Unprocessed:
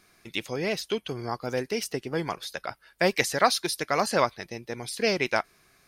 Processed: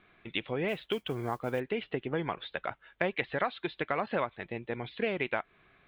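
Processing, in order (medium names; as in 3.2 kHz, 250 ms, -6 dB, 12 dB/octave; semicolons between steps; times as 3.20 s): steep low-pass 3.6 kHz 72 dB/octave; compression 4:1, threshold -28 dBFS, peak gain reduction 11.5 dB; 0.68–1.60 s: modulation noise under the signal 28 dB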